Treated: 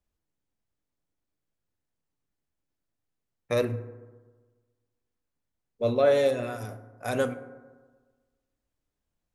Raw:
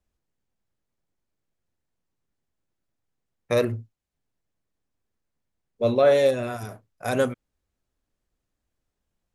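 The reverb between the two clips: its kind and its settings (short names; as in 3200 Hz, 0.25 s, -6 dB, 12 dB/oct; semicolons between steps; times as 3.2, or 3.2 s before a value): FDN reverb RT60 1.4 s, low-frequency decay 1.05×, high-frequency decay 0.35×, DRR 10.5 dB; gain -4 dB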